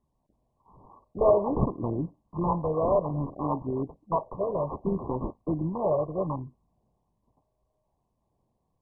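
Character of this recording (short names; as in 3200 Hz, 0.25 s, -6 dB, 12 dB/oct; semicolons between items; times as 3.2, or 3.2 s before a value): phasing stages 8, 0.62 Hz, lowest notch 260–1100 Hz; aliases and images of a low sample rate 2800 Hz, jitter 0%; MP2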